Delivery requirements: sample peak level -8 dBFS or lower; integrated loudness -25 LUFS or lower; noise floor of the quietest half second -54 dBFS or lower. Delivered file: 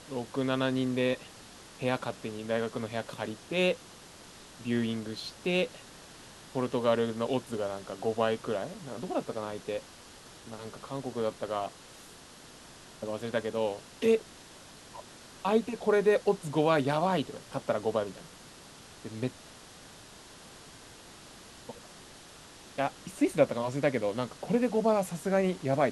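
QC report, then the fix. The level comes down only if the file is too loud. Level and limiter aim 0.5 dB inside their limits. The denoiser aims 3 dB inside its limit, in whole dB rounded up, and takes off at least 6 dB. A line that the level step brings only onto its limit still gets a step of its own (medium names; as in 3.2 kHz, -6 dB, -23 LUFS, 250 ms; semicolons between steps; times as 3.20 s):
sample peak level -10.0 dBFS: pass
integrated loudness -31.0 LUFS: pass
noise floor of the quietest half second -51 dBFS: fail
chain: noise reduction 6 dB, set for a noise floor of -51 dBFS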